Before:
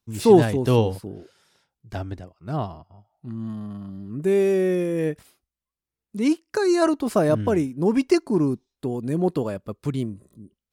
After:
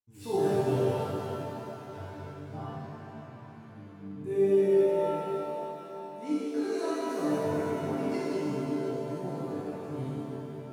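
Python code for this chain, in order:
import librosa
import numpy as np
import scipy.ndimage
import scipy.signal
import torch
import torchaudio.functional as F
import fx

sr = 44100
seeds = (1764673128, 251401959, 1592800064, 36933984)

y = fx.resonator_bank(x, sr, root=43, chord='sus4', decay_s=0.39)
y = fx.rev_shimmer(y, sr, seeds[0], rt60_s=3.5, semitones=7, shimmer_db=-8, drr_db=-8.5)
y = F.gain(torch.from_numpy(y), -6.0).numpy()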